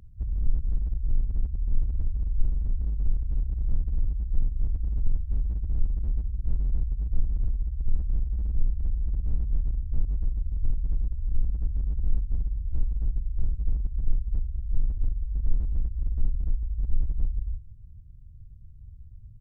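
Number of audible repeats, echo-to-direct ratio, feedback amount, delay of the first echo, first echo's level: 2, -22.5 dB, 44%, 83 ms, -23.5 dB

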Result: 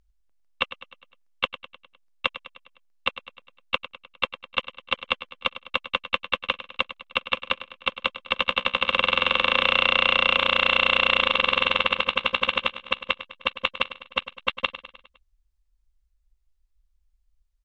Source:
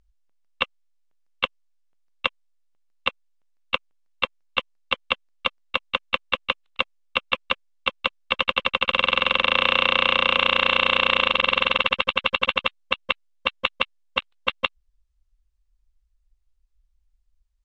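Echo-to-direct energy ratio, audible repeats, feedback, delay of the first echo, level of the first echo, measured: -12.5 dB, 4, 54%, 102 ms, -14.0 dB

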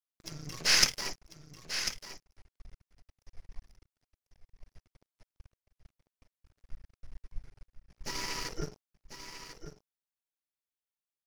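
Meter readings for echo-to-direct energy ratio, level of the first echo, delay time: -10.0 dB, -10.0 dB, 1044 ms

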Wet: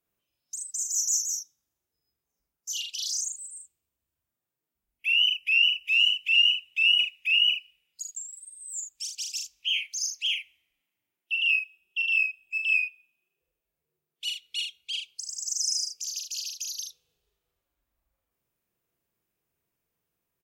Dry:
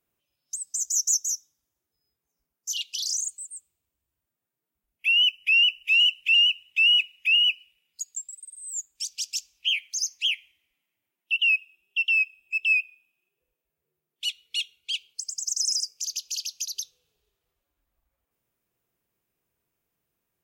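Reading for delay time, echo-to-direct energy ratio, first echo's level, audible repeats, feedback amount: 41 ms, -2.0 dB, -3.5 dB, 2, no regular repeats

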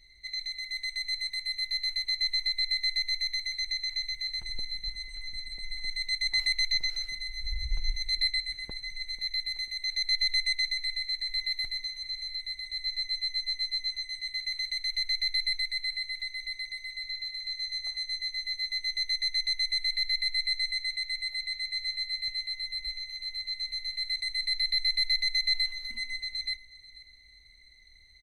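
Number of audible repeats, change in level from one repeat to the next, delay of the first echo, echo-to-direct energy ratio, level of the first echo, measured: 2, -8.5 dB, 491 ms, -18.5 dB, -19.0 dB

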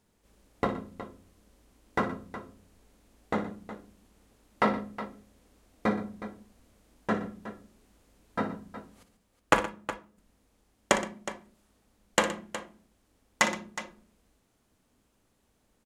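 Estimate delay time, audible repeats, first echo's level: 58 ms, 3, -12.0 dB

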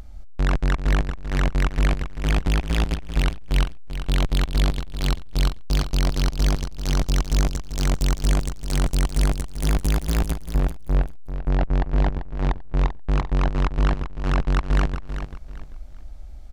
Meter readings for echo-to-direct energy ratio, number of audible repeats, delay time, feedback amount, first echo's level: -9.5 dB, 3, 391 ms, 27%, -10.0 dB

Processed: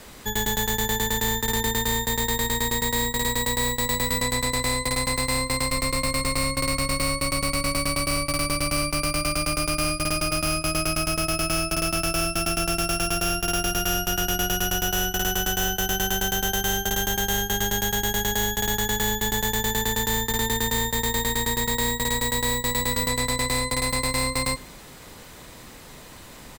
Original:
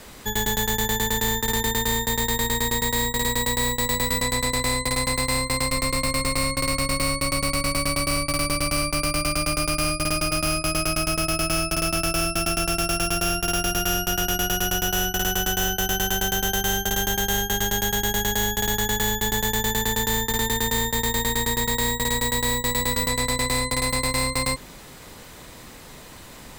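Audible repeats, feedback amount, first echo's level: 2, 47%, -23.0 dB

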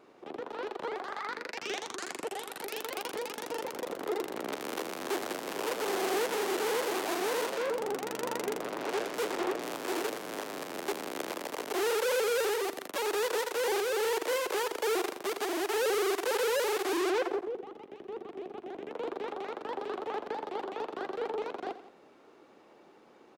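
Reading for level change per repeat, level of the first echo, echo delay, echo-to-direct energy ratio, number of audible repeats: -5.0 dB, -14.0 dB, 87 ms, -13.0 dB, 2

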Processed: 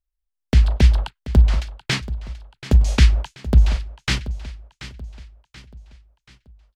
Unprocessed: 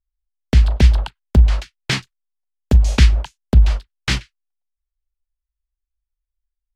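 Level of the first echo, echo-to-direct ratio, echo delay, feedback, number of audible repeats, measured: -15.0 dB, -14.0 dB, 732 ms, 44%, 3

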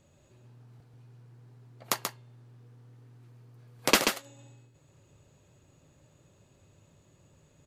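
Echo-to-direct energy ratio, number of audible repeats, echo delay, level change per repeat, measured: -5.5 dB, 1, 134 ms, no regular repeats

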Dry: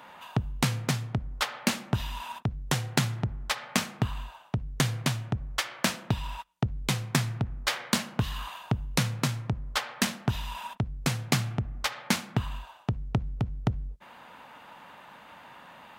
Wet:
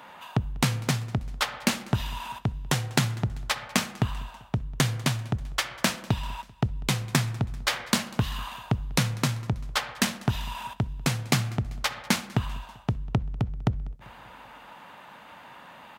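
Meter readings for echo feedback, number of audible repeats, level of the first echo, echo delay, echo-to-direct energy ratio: 59%, 3, -23.0 dB, 195 ms, -21.0 dB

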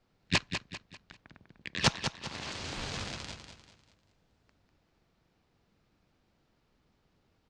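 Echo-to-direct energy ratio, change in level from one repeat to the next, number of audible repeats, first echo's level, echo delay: -7.5 dB, -8.5 dB, 4, -8.0 dB, 197 ms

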